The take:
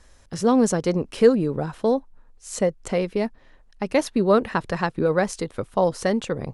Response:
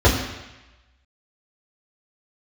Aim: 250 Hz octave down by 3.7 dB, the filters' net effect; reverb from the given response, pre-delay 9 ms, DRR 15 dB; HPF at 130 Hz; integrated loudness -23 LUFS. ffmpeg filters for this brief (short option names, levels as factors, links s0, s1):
-filter_complex "[0:a]highpass=130,equalizer=f=250:t=o:g=-4,asplit=2[s0][s1];[1:a]atrim=start_sample=2205,adelay=9[s2];[s1][s2]afir=irnorm=-1:irlink=0,volume=0.0133[s3];[s0][s3]amix=inputs=2:normalize=0,volume=1.06"